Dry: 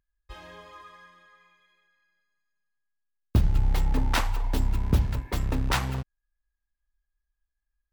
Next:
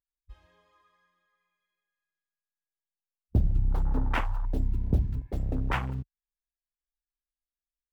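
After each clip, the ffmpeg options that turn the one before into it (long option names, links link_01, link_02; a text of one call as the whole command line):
ffmpeg -i in.wav -af "afwtdn=0.0224,volume=-2.5dB" out.wav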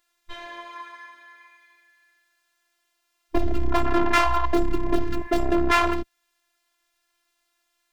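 ffmpeg -i in.wav -filter_complex "[0:a]asplit=2[link_01][link_02];[link_02]highpass=frequency=720:poles=1,volume=33dB,asoftclip=type=tanh:threshold=-14dB[link_03];[link_01][link_03]amix=inputs=2:normalize=0,lowpass=frequency=2900:poles=1,volume=-6dB,afftfilt=real='hypot(re,im)*cos(PI*b)':imag='0':win_size=512:overlap=0.75,volume=6.5dB" out.wav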